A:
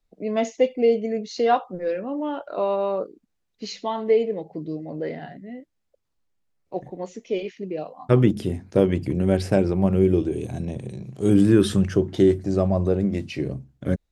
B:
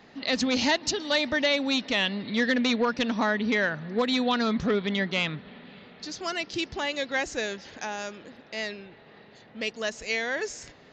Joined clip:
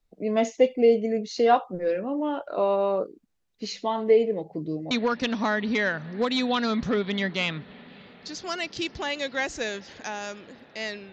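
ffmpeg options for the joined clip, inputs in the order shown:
-filter_complex "[0:a]apad=whole_dur=11.12,atrim=end=11.12,atrim=end=4.912[s0];[1:a]atrim=start=2.678:end=8.89[s1];[s0][s1]acrossfade=d=0.004:c1=hsin:c2=hsin"

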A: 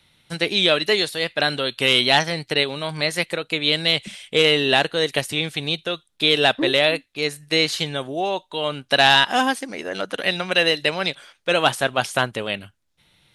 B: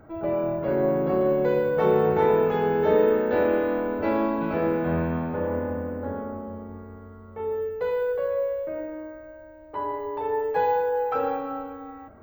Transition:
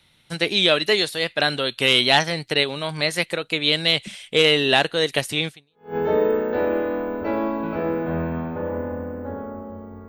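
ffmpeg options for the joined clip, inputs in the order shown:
-filter_complex "[0:a]apad=whole_dur=10.08,atrim=end=10.08,atrim=end=5.96,asetpts=PTS-STARTPTS[s0];[1:a]atrim=start=2.26:end=6.86,asetpts=PTS-STARTPTS[s1];[s0][s1]acrossfade=d=0.48:c1=exp:c2=exp"

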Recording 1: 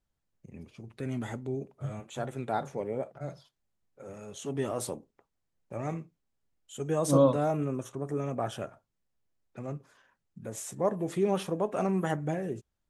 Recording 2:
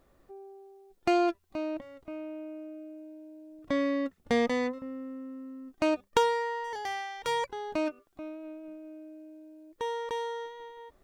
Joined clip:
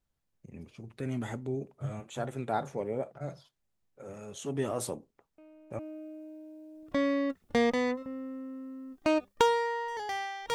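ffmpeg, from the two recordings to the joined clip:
-filter_complex "[1:a]asplit=2[s0][s1];[0:a]apad=whole_dur=10.54,atrim=end=10.54,atrim=end=5.792[s2];[s1]atrim=start=2.548:end=7.3[s3];[s0]atrim=start=2.14:end=2.55,asetpts=PTS-STARTPTS,volume=0.168,afade=t=in:d=0.004:c=hsin,afade=t=out:st=0.406:d=0.004:c=hsin,adelay=5380[s4];[s2][s3]acrossfade=d=0.004:c1=hsin:c2=hsin[s5];[s5][s4]amix=inputs=2:normalize=0"

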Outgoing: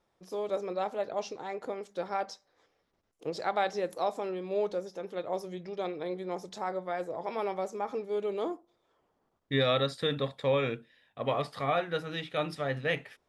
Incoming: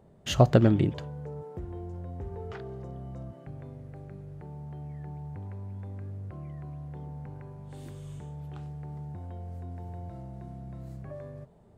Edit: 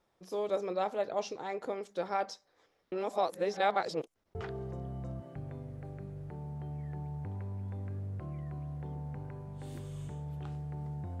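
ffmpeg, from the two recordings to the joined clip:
-filter_complex "[0:a]apad=whole_dur=11.2,atrim=end=11.2,asplit=2[s0][s1];[s0]atrim=end=2.922[s2];[s1]atrim=start=2.918:end=4.352,asetpts=PTS-STARTPTS,areverse[s3];[1:a]atrim=start=2.458:end=9.31[s4];[s2][s3]acrossfade=d=0.004:c1=hsin:c2=hsin[s5];[s5][s4]acrossfade=d=0.004:c1=hsin:c2=hsin"

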